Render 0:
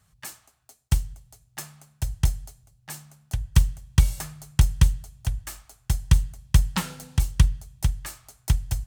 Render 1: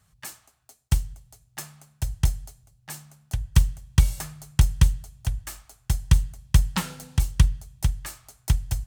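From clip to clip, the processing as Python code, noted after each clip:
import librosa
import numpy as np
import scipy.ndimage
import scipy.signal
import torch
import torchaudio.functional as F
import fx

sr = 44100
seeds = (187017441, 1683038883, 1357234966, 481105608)

y = x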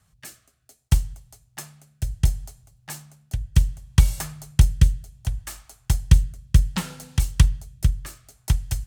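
y = fx.rotary(x, sr, hz=0.65)
y = F.gain(torch.from_numpy(y), 3.5).numpy()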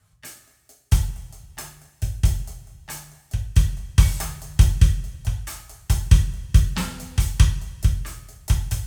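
y = fx.rev_double_slope(x, sr, seeds[0], early_s=0.41, late_s=1.9, knee_db=-18, drr_db=-1.5)
y = F.gain(torch.from_numpy(y), -1.5).numpy()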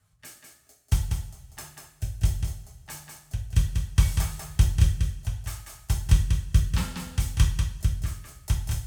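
y = x + 10.0 ** (-5.5 / 20.0) * np.pad(x, (int(192 * sr / 1000.0), 0))[:len(x)]
y = F.gain(torch.from_numpy(y), -5.5).numpy()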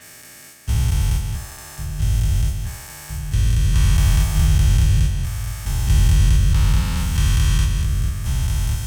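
y = fx.spec_dilate(x, sr, span_ms=480)
y = F.gain(torch.from_numpy(y), -2.5).numpy()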